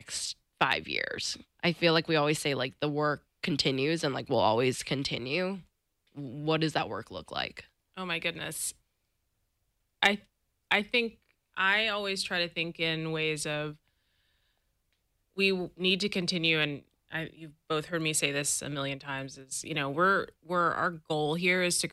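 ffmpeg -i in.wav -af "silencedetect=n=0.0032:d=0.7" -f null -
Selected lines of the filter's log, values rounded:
silence_start: 8.73
silence_end: 10.02 | silence_duration: 1.29
silence_start: 13.75
silence_end: 15.37 | silence_duration: 1.61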